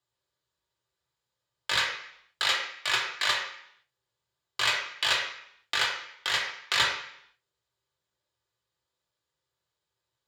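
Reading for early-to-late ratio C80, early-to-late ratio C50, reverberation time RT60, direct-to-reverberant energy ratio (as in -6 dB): 7.5 dB, 5.0 dB, 0.70 s, -2.5 dB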